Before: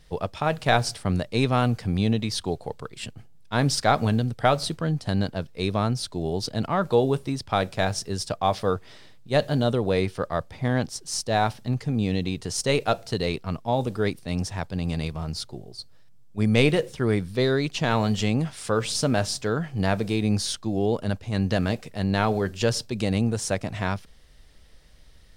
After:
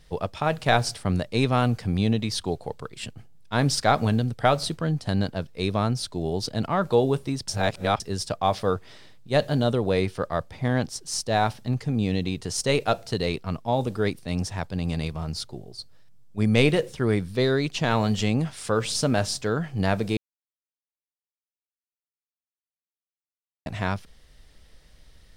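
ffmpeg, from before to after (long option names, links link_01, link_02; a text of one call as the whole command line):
ffmpeg -i in.wav -filter_complex "[0:a]asplit=5[link_01][link_02][link_03][link_04][link_05];[link_01]atrim=end=7.482[link_06];[link_02]atrim=start=7.478:end=8.002,asetpts=PTS-STARTPTS,areverse[link_07];[link_03]atrim=start=7.998:end=20.17,asetpts=PTS-STARTPTS,afade=type=out:start_time=12.168:duration=0.004:curve=hsin[link_08];[link_04]atrim=start=20.17:end=23.66,asetpts=PTS-STARTPTS,volume=0[link_09];[link_05]atrim=start=23.66,asetpts=PTS-STARTPTS,afade=type=in:duration=0.004:curve=hsin[link_10];[link_06][link_07]acrossfade=duration=0.004:curve1=hsin:curve2=hsin[link_11];[link_08][link_09][link_10]concat=n=3:v=0:a=1[link_12];[link_11][link_12]acrossfade=duration=0.004:curve1=hsin:curve2=hsin" out.wav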